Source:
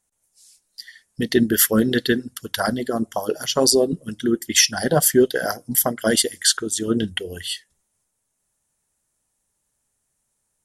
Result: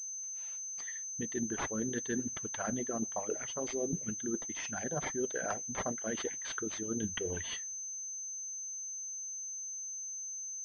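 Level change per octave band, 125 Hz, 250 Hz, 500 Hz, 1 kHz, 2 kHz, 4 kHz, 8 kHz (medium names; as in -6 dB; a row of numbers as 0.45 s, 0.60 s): -14.5 dB, -16.0 dB, -17.0 dB, -13.5 dB, -15.0 dB, -23.5 dB, -9.5 dB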